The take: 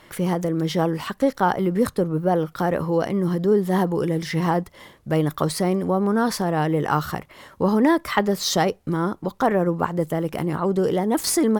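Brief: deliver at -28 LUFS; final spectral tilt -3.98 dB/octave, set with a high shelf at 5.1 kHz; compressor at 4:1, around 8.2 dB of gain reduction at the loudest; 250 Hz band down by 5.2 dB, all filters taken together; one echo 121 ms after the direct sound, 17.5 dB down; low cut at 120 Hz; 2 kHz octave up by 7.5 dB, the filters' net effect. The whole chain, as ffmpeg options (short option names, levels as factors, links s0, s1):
-af "highpass=120,equalizer=f=250:t=o:g=-7.5,equalizer=f=2000:t=o:g=8.5,highshelf=f=5100:g=6,acompressor=threshold=0.0891:ratio=4,aecho=1:1:121:0.133,volume=0.794"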